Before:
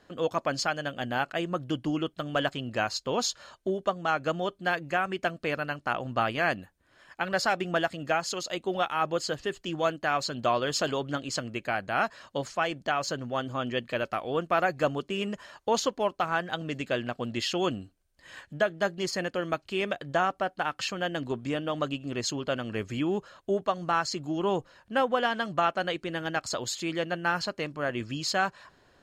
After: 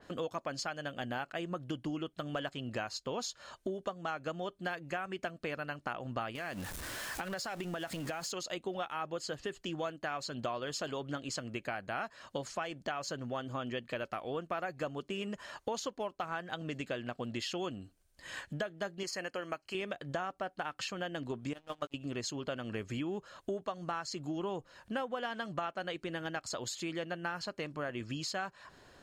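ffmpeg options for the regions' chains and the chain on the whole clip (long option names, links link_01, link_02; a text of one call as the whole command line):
ffmpeg -i in.wav -filter_complex "[0:a]asettb=1/sr,asplit=3[link_01][link_02][link_03];[link_01]atrim=end=6.354[link_04];[link_02]atrim=start=6.35:end=8.32,asetpts=PTS-STARTPTS,afade=type=in:duration=0.004:curve=qsin,afade=type=out:start_time=1.966:duration=0.004:curve=qsin,aeval=exprs='val(0)+0.5*0.0106*sgn(val(0))':channel_layout=same,highshelf=frequency=5300:gain=5.5,acompressor=threshold=-32dB:ratio=4:attack=3.2:release=140:knee=1:detection=peak[link_05];[link_03]atrim=start=8.316[link_06];[link_04][link_05]acrossfade=duration=0.004:curve1=hsin:curve2=qsin[link_07];[link_07][link_06]acrossfade=duration=0.004:curve1=qsin:curve2=hsin,asettb=1/sr,asplit=3[link_08][link_09][link_10];[link_08]atrim=end=19.034[link_11];[link_09]atrim=start=19.03:end=19.75,asetpts=PTS-STARTPTS,afade=type=in:duration=0.004:curve=qsin,afade=type=out:start_time=0.716:duration=0.004:curve=qsin,asuperstop=centerf=3600:order=4:qfactor=4.3,lowshelf=frequency=320:gain=-11.5[link_12];[link_10]atrim=start=19.746[link_13];[link_11][link_12]acrossfade=duration=0.004:curve1=hsin:curve2=qsin[link_14];[link_14][link_13]acrossfade=duration=0.004:curve1=qsin:curve2=hsin,asettb=1/sr,asplit=3[link_15][link_16][link_17];[link_15]atrim=end=21.534[link_18];[link_16]atrim=start=21.53:end=21.94,asetpts=PTS-STARTPTS,afade=type=in:duration=0.004:curve=qsin,afade=type=out:start_time=0.406:duration=0.004:curve=qsin,agate=range=-18dB:threshold=-28dB:ratio=16:release=100:detection=peak,asplit=2[link_19][link_20];[link_20]adelay=17,volume=-12.5dB[link_21];[link_19][link_21]amix=inputs=2:normalize=0,atrim=end_sample=18081,aeval=exprs='sgn(val(0))*max(abs(val(0))-0.00237,0)':channel_layout=same[link_22];[link_17]atrim=start=21.936[link_23];[link_18][link_22]acrossfade=duration=0.004:curve1=hsin:curve2=qsin[link_24];[link_24][link_23]acrossfade=duration=0.004:curve1=qsin:curve2=hsin,equalizer=frequency=9000:width_type=o:width=1.5:gain=4,acompressor=threshold=-39dB:ratio=4,adynamicequalizer=threshold=0.00141:dfrequency=3600:dqfactor=0.7:tfrequency=3600:tqfactor=0.7:attack=5:release=100:ratio=0.375:range=1.5:mode=cutabove:tftype=highshelf,volume=2.5dB" out.wav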